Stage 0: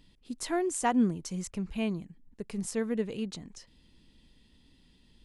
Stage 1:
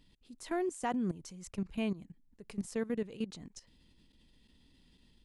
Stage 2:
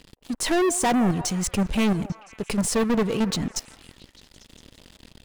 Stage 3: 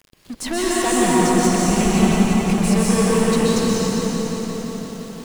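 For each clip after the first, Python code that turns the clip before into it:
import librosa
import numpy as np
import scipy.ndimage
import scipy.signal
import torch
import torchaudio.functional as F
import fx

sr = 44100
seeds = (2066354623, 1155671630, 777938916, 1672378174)

y1 = fx.level_steps(x, sr, step_db=16)
y2 = fx.leveller(y1, sr, passes=5)
y2 = fx.echo_stepped(y2, sr, ms=169, hz=650.0, octaves=0.7, feedback_pct=70, wet_db=-11)
y2 = F.gain(torch.from_numpy(y2), 5.0).numpy()
y3 = np.where(np.abs(y2) >= 10.0 ** (-40.5 / 20.0), y2, 0.0)
y3 = fx.rev_plate(y3, sr, seeds[0], rt60_s=4.7, hf_ratio=0.6, predelay_ms=115, drr_db=-8.0)
y3 = fx.echo_crushed(y3, sr, ms=173, feedback_pct=80, bits=7, wet_db=-8.5)
y3 = F.gain(torch.from_numpy(y3), -3.0).numpy()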